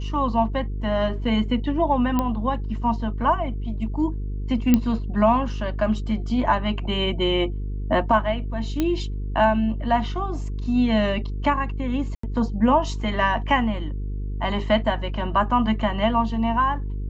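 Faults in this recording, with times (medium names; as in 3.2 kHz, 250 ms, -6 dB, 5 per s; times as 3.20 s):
buzz 50 Hz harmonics 9 -28 dBFS
2.19 s: pop -10 dBFS
4.74 s: pop -5 dBFS
8.80 s: pop -10 dBFS
12.15–12.23 s: dropout 84 ms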